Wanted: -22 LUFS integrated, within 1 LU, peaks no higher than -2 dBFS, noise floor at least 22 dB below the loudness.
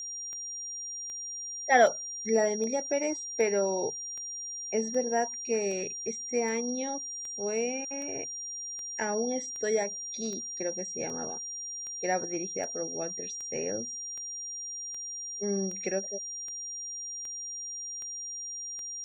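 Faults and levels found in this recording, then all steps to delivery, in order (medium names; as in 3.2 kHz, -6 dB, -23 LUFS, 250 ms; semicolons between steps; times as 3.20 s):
clicks found 25; steady tone 5.7 kHz; tone level -36 dBFS; loudness -31.5 LUFS; peak level -10.5 dBFS; loudness target -22.0 LUFS
-> de-click; band-stop 5.7 kHz, Q 30; trim +9.5 dB; peak limiter -2 dBFS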